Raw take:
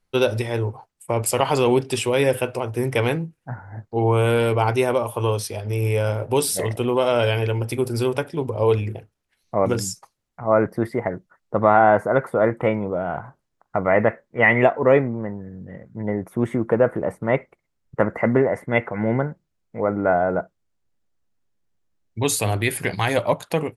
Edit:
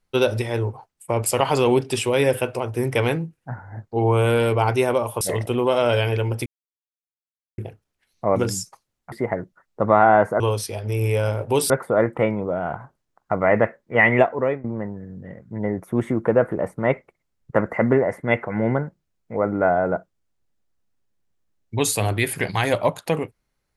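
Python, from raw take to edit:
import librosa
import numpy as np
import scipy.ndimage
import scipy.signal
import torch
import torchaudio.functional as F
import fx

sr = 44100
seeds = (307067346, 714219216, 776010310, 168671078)

y = fx.edit(x, sr, fx.move(start_s=5.21, length_s=1.3, to_s=12.14),
    fx.silence(start_s=7.76, length_s=1.12),
    fx.cut(start_s=10.42, length_s=0.44),
    fx.fade_out_to(start_s=14.65, length_s=0.43, floor_db=-19.0), tone=tone)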